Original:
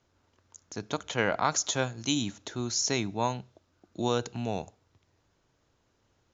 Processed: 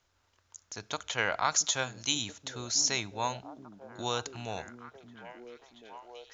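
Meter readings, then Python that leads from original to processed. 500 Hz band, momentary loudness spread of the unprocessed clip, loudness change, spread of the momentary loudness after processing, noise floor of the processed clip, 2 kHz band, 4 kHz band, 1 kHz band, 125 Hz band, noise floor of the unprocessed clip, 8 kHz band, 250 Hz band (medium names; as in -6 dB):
-6.0 dB, 14 LU, -1.0 dB, 22 LU, -73 dBFS, +0.5 dB, +1.5 dB, -1.5 dB, -7.5 dB, -72 dBFS, no reading, -9.5 dB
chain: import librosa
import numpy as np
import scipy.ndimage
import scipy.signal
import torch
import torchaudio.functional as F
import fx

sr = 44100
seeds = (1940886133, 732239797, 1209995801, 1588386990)

y = fx.peak_eq(x, sr, hz=230.0, db=-13.5, octaves=2.8)
y = fx.echo_stepped(y, sr, ms=679, hz=210.0, octaves=0.7, feedback_pct=70, wet_db=-6.0)
y = y * librosa.db_to_amplitude(2.0)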